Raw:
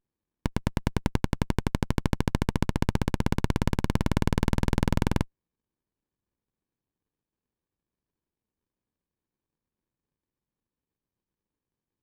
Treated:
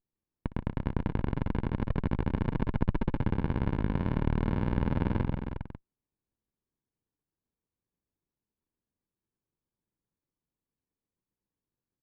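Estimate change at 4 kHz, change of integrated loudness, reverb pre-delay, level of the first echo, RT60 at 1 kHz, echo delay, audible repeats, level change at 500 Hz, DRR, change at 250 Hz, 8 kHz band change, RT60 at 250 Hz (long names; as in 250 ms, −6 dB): −13.5 dB, −3.5 dB, no reverb audible, −18.0 dB, no reverb audible, 60 ms, 5, −3.5 dB, no reverb audible, −3.0 dB, below −30 dB, no reverb audible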